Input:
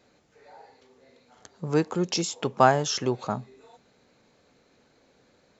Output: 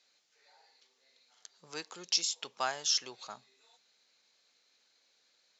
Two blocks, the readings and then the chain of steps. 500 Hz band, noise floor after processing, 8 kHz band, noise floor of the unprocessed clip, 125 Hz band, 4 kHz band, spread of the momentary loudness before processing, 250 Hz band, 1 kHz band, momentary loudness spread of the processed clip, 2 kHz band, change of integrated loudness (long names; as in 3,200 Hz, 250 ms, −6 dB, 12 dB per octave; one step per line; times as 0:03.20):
−20.0 dB, −73 dBFS, can't be measured, −64 dBFS, −31.5 dB, +0.5 dB, 13 LU, −25.5 dB, −15.0 dB, 18 LU, −9.0 dB, −7.0 dB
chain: resonant band-pass 4,800 Hz, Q 1.3
level +1.5 dB